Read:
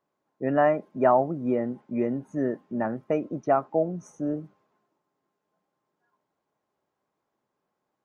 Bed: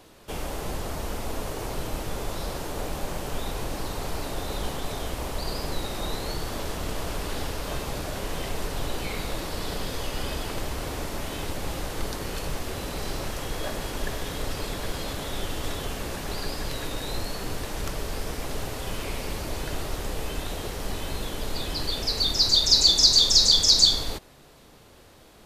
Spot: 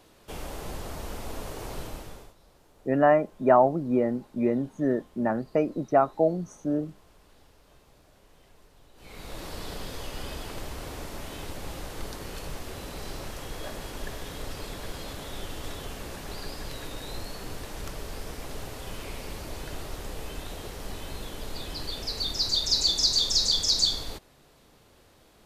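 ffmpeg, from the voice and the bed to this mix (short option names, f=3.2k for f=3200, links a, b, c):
-filter_complex "[0:a]adelay=2450,volume=1.5dB[a];[1:a]volume=16dB,afade=t=out:st=1.79:d=0.55:silence=0.0794328,afade=t=in:st=8.95:d=0.52:silence=0.0891251[b];[a][b]amix=inputs=2:normalize=0"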